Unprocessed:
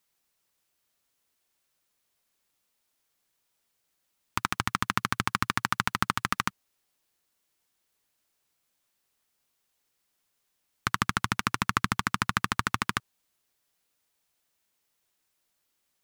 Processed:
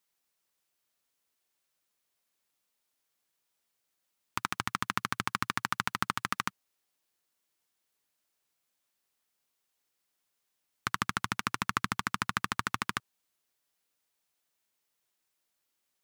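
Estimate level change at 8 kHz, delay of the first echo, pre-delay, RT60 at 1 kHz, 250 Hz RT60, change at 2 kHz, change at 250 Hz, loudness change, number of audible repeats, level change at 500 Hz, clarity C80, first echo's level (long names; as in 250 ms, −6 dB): −4.0 dB, no echo audible, no reverb audible, no reverb audible, no reverb audible, −4.0 dB, −5.5 dB, −4.5 dB, no echo audible, −4.5 dB, no reverb audible, no echo audible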